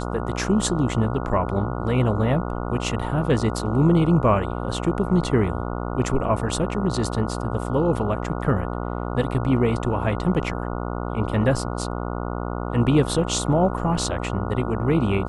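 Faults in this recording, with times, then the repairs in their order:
buzz 60 Hz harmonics 24 -28 dBFS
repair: de-hum 60 Hz, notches 24

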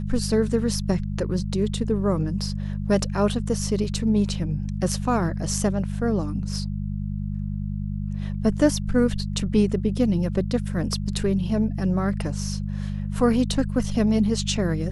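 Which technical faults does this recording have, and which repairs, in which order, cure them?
hum 50 Hz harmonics 4 -28 dBFS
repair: de-hum 50 Hz, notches 4

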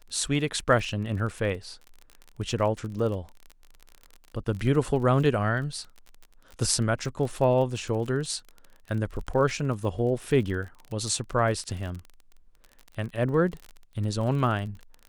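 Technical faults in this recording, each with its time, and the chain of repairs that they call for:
crackle 35 per s -34 dBFS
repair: de-click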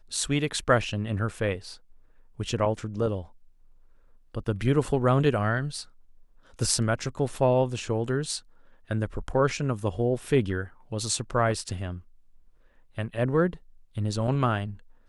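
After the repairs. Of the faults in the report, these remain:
nothing left

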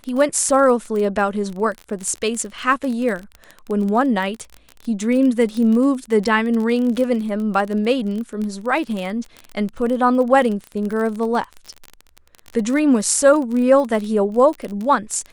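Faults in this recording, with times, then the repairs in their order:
crackle 29 per s -24 dBFS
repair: de-click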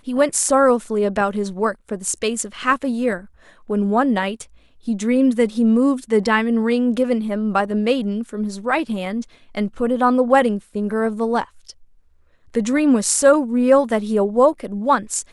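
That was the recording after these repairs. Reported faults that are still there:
nothing left

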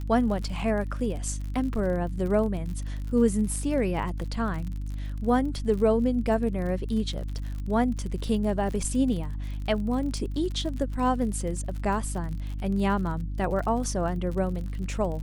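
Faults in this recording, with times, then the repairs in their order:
crackle 47 per s -34 dBFS
hum 50 Hz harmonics 6 -32 dBFS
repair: de-click; de-hum 50 Hz, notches 6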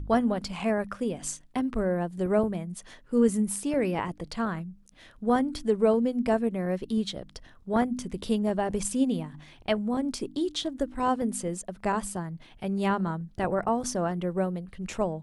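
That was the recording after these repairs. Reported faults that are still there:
nothing left

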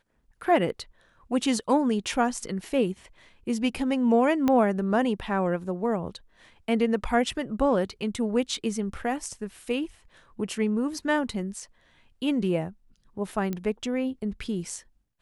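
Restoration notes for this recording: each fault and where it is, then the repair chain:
4.48 s: pop -12 dBFS
13.53 s: pop -18 dBFS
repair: de-click

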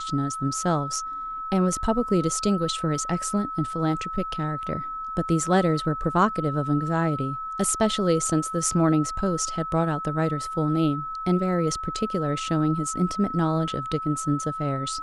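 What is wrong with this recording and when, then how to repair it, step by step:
whine 1.3 kHz -30 dBFS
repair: band-stop 1.3 kHz, Q 30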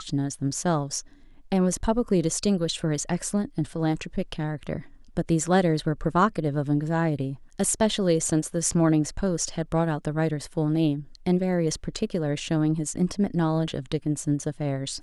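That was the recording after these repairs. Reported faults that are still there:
nothing left

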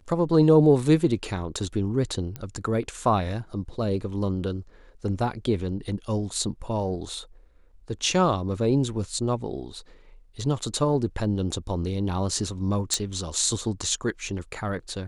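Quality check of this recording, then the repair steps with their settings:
2.36 s: pop -19 dBFS
12.94 s: pop -9 dBFS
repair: de-click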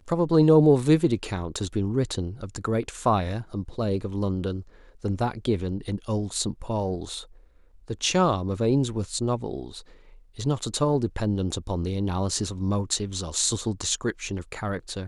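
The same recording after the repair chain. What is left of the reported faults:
nothing left

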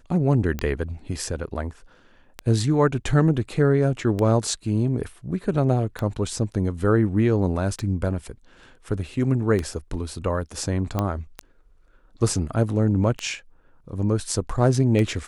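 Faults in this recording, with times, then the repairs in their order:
tick 33 1/3 rpm -13 dBFS
10.99 s: pop -11 dBFS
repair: de-click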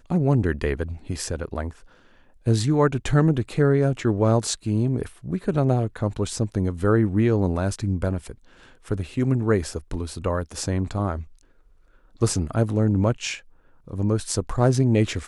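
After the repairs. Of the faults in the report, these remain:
nothing left

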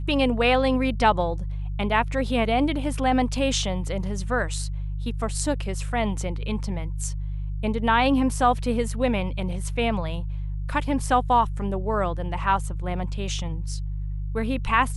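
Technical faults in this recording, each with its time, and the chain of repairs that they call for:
hum 50 Hz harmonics 3 -29 dBFS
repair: de-hum 50 Hz, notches 3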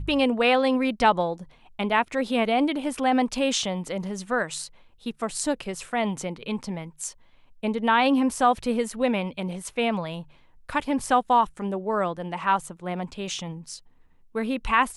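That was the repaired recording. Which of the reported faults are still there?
nothing left

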